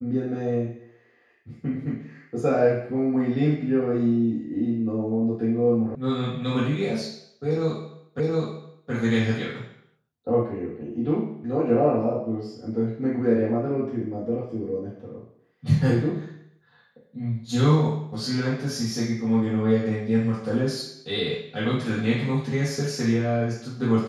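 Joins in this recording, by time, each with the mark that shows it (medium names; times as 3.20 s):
5.95 s: sound stops dead
8.20 s: repeat of the last 0.72 s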